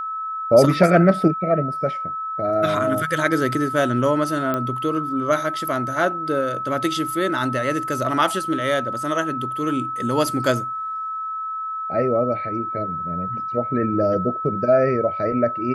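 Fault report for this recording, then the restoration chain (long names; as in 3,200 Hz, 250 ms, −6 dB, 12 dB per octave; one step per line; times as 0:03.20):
whistle 1,300 Hz −25 dBFS
0:04.54: click −11 dBFS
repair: click removal
notch filter 1,300 Hz, Q 30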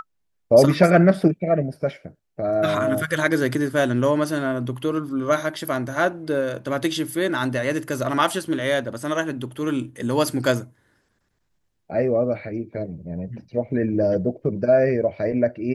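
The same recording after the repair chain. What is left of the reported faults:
none of them is left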